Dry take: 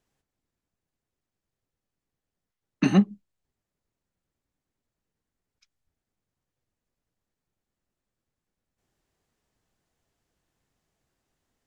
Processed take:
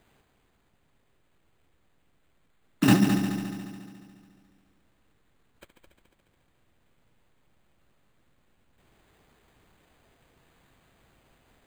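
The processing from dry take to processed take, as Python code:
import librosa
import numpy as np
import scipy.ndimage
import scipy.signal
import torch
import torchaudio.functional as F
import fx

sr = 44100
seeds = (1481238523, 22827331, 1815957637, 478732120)

y = fx.over_compress(x, sr, threshold_db=-27.0, ratio=-1.0)
y = fx.echo_heads(y, sr, ms=71, heads='all three', feedback_pct=61, wet_db=-12)
y = np.repeat(y[::8], 8)[:len(y)]
y = y * librosa.db_to_amplitude(7.0)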